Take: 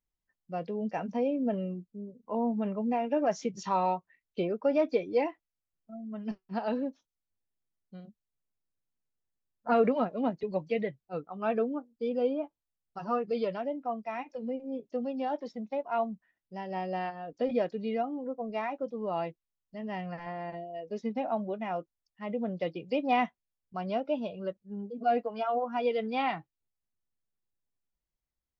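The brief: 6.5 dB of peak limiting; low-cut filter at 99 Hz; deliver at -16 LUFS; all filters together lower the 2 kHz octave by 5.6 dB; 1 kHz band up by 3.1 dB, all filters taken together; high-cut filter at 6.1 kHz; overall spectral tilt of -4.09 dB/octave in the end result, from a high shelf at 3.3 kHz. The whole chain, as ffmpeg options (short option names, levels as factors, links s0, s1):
-af "highpass=99,lowpass=6100,equalizer=f=1000:t=o:g=6.5,equalizer=f=2000:t=o:g=-6.5,highshelf=f=3300:g=-8,volume=6.68,alimiter=limit=0.668:level=0:latency=1"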